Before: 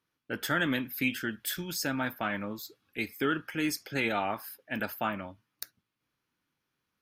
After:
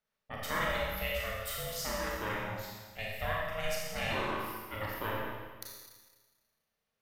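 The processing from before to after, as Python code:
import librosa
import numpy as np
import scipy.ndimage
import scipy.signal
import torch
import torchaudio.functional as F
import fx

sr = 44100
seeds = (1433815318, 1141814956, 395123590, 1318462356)

y = x * np.sin(2.0 * np.pi * 320.0 * np.arange(len(x)) / sr)
y = fx.rev_schroeder(y, sr, rt60_s=1.4, comb_ms=28, drr_db=-3.5)
y = y * 10.0 ** (-5.0 / 20.0)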